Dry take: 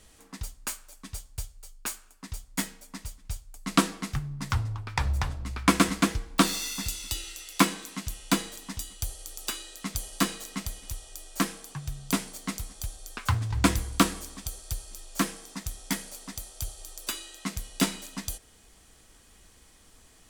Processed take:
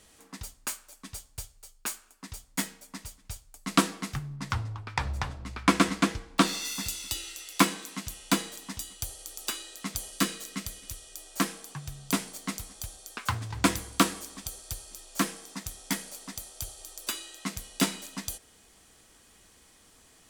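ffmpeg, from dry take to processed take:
-filter_complex "[0:a]asettb=1/sr,asplit=3[a][b][c];[a]atrim=end=4.364[d];[b]atrim=start=4.36:end=6.65,asetpts=PTS-STARTPTS,afade=t=in:d=0.004:c=qsin,afade=t=out:st=2.286:d=0.004:c=qsin,highshelf=f=10k:g=-11.5[e];[c]atrim=start=6.646[f];[d][e]acrossfade=d=0.004:c1=hsin:c2=qsin[g];[g][f]acrossfade=d=0.004:c1=qsin:c2=hsin,asettb=1/sr,asplit=3[h][i][j];[h]atrim=end=10.114[k];[i]atrim=start=10.11:end=11.17,asetpts=PTS-STARTPTS,afade=t=in:d=0.004:c=qsin,afade=t=out:st=1.056:d=0.004:c=qsin,equalizer=f=840:t=o:w=0.62:g=-7.5[l];[j]atrim=start=11.166[m];[k][l]acrossfade=d=0.004:c1=hsin:c2=qsin[n];[n][m]acrossfade=d=0.004:c1=qsin:c2=hsin,asettb=1/sr,asplit=3[o][p][q];[o]atrim=end=13.004[r];[p]atrim=start=13:end=14.35,asetpts=PTS-STARTPTS,afade=t=in:d=0.004:c=qsin,afade=t=out:st=1.346:d=0.004:c=qsin,lowshelf=f=82:g=-8.5[s];[q]atrim=start=14.346[t];[r][s]acrossfade=d=0.004:c1=hsin:c2=qsin[u];[u][t]acrossfade=d=0.004:c1=qsin:c2=hsin,lowshelf=f=72:g=-12"

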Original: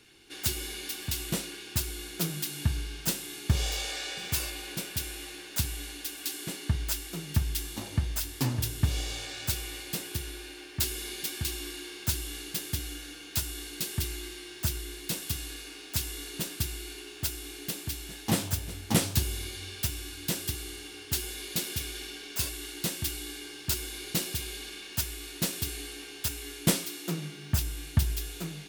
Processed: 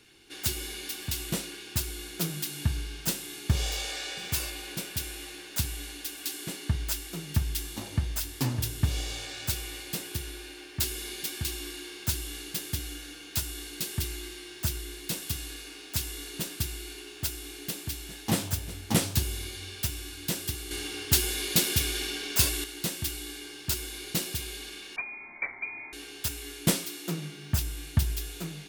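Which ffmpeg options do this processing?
-filter_complex "[0:a]asettb=1/sr,asplit=3[a][b][c];[a]atrim=end=24.964[d];[b]atrim=start=24.96:end=25.93,asetpts=PTS-STARTPTS,afade=t=in:d=0.004:c=qsin,afade=t=out:st=0.966:d=0.004:c=qsin,lowpass=f=2.1k:t=q:w=0.5098,lowpass=f=2.1k:t=q:w=0.6013,lowpass=f=2.1k:t=q:w=0.9,lowpass=f=2.1k:t=q:w=2.563,afreqshift=-2500[e];[c]atrim=start=25.926[f];[d][e]acrossfade=d=0.004:c1=hsin:c2=qsin[g];[g][f]acrossfade=d=0.004:c1=qsin:c2=hsin,asplit=3[h][i][j];[h]atrim=end=20.712[k];[i]atrim=start=20.708:end=22.642,asetpts=PTS-STARTPTS,volume=7.5dB[l];[j]atrim=start=22.638[m];[k][l]acrossfade=d=0.004:c1=hsin:c2=hsin[n];[n][m]acrossfade=d=0.004:c1=hsin:c2=hsin"

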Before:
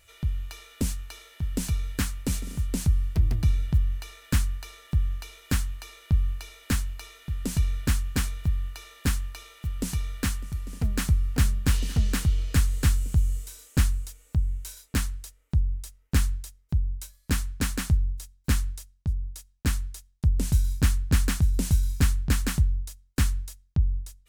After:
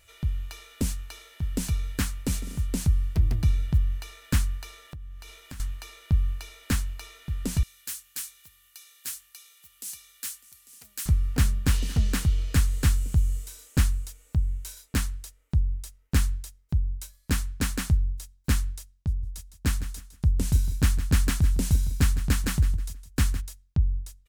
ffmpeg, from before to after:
-filter_complex "[0:a]asettb=1/sr,asplit=3[a][b][c];[a]atrim=end=4.844[d];[b]atrim=start=4.84:end=5.6,asetpts=PTS-STARTPTS,afade=t=in:d=0.004:c=qsin,afade=t=out:st=0.756:d=0.004:c=qsin,acompressor=threshold=-39dB:ratio=5:attack=3.2:release=140:knee=1:detection=peak[e];[c]atrim=start=5.596[f];[d][e]acrossfade=d=0.004:c1=hsin:c2=qsin[g];[g][f]acrossfade=d=0.004:c1=qsin:c2=hsin,asettb=1/sr,asplit=3[h][i][j];[h]atrim=end=7.634[k];[i]atrim=start=7.63:end=11.06,asetpts=PTS-STARTPTS,afade=t=in:d=0.004:c=qsin,afade=t=out:st=3.426:d=0.004:c=qsin,aderivative[l];[j]atrim=start=11.056[m];[k][l]acrossfade=d=0.004:c1=hsin:c2=qsin[n];[n][m]acrossfade=d=0.004:c1=qsin:c2=hsin,asplit=3[o][p][q];[o]afade=t=out:st=19.22:d=0.02[r];[p]aecho=1:1:159|318|477:0.224|0.0672|0.0201,afade=t=in:st=19.22:d=0.02,afade=t=out:st=23.4:d=0.02[s];[q]afade=t=in:st=23.4:d=0.02[t];[r][s][t]amix=inputs=3:normalize=0"

